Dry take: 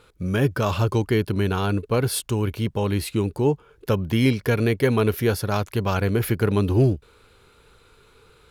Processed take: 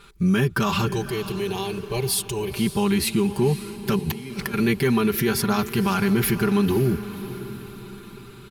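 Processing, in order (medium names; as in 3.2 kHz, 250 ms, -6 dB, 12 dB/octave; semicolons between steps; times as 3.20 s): peaking EQ 560 Hz -14.5 dB 0.56 oct; comb 5.1 ms, depth 94%; peak limiter -17 dBFS, peak gain reduction 10 dB; 0.87–2.51 s: static phaser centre 570 Hz, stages 4; 3.99–4.54 s: compressor with a negative ratio -33 dBFS, ratio -0.5; echo that smears into a reverb 535 ms, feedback 50%, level -13 dB; trim +4.5 dB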